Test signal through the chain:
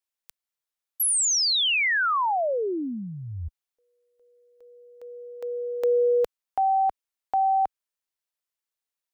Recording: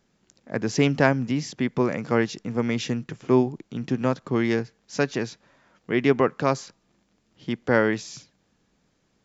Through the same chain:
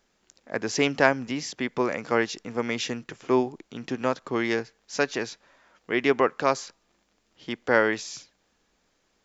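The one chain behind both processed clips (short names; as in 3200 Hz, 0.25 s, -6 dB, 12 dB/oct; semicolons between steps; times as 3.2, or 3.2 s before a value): bell 140 Hz -13.5 dB 2 oct; gain +2 dB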